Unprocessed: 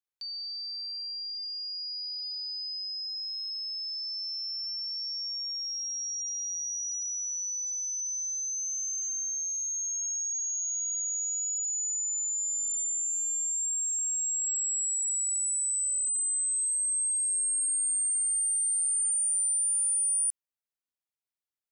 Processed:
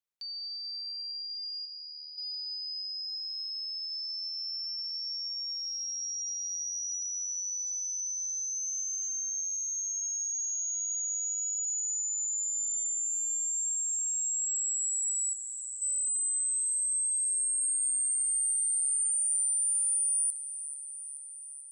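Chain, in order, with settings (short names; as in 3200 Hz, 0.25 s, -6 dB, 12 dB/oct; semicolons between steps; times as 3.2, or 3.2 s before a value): 1.65–2.18 notch 5100 Hz, Q 5.6; 15.33–15.82 air absorption 110 m; thin delay 0.434 s, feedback 72%, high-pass 5100 Hz, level -13 dB; on a send at -24 dB: reverb, pre-delay 3 ms; on the sum: gain -1.5 dB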